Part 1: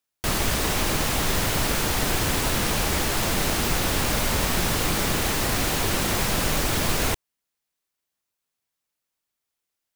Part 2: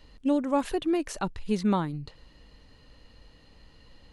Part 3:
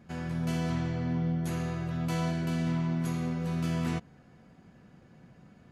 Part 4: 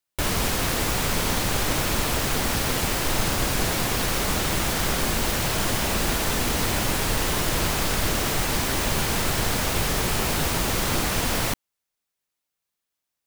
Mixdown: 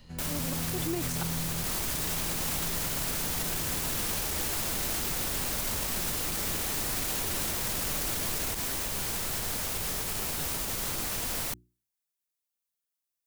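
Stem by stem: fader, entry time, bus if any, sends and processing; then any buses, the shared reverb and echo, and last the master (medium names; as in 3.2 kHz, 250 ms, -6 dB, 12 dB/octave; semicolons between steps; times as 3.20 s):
-1.5 dB, 1.40 s, no send, none
-2.0 dB, 0.00 s, no send, slow attack 360 ms
-12.0 dB, 0.00 s, no send, peaking EQ 100 Hz +13 dB 2.3 oct
-11.5 dB, 0.00 s, no send, hum notches 60/120/180/240/300/360 Hz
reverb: none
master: treble shelf 5.6 kHz +10.5 dB; peak limiter -22 dBFS, peak gain reduction 14 dB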